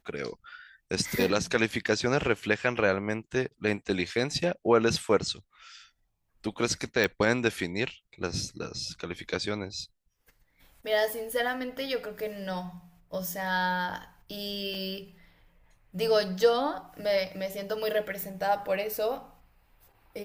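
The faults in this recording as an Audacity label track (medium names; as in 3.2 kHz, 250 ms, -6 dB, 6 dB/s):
7.040000	7.040000	pop -13 dBFS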